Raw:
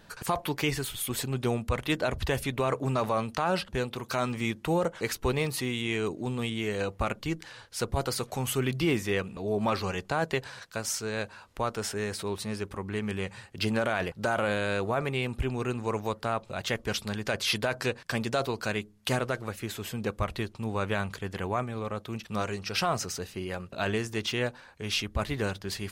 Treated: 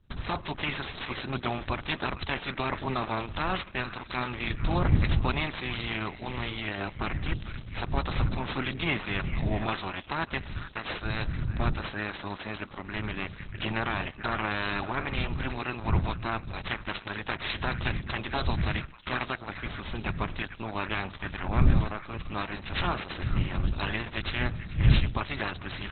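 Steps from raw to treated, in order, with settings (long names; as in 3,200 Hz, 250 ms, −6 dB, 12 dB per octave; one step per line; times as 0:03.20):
ceiling on every frequency bin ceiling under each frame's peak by 17 dB
wind on the microphone 110 Hz −31 dBFS
parametric band 480 Hz −13 dB 0.21 octaves
noise gate with hold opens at −30 dBFS
sample-rate reduction 8,000 Hz, jitter 0%
echo through a band-pass that steps 444 ms, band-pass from 1,700 Hz, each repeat 1.4 octaves, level −8.5 dB
on a send at −22 dB: convolution reverb RT60 0.75 s, pre-delay 60 ms
on the sum: Opus 8 kbit/s 48,000 Hz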